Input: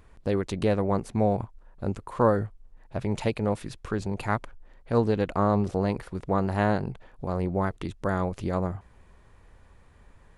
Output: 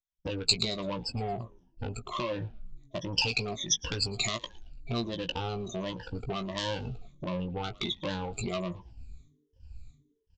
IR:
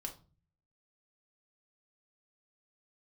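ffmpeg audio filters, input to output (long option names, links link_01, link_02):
-filter_complex "[0:a]afftfilt=real='re*pow(10,20/40*sin(2*PI*(1.2*log(max(b,1)*sr/1024/100)/log(2)-(-1.4)*(pts-256)/sr)))':imag='im*pow(10,20/40*sin(2*PI*(1.2*log(max(b,1)*sr/1024/100)/log(2)-(-1.4)*(pts-256)/sr)))':win_size=1024:overlap=0.75,afftdn=noise_reduction=26:noise_floor=-40,agate=range=-33dB:threshold=-47dB:ratio=3:detection=peak,adynamicequalizer=threshold=0.01:dfrequency=290:dqfactor=4.6:tfrequency=290:tqfactor=4.6:attack=5:release=100:ratio=0.375:range=2.5:mode=cutabove:tftype=bell,alimiter=limit=-13.5dB:level=0:latency=1:release=10,acompressor=threshold=-33dB:ratio=5,aresample=16000,asoftclip=type=tanh:threshold=-29.5dB,aresample=44100,asplit=2[link_01][link_02];[link_02]adelay=17,volume=-7dB[link_03];[link_01][link_03]amix=inputs=2:normalize=0,asplit=2[link_04][link_05];[link_05]asplit=3[link_06][link_07][link_08];[link_06]adelay=112,afreqshift=-150,volume=-22dB[link_09];[link_07]adelay=224,afreqshift=-300,volume=-29.7dB[link_10];[link_08]adelay=336,afreqshift=-450,volume=-37.5dB[link_11];[link_09][link_10][link_11]amix=inputs=3:normalize=0[link_12];[link_04][link_12]amix=inputs=2:normalize=0,aexciter=amount=14.1:drive=2.5:freq=2600,volume=2dB"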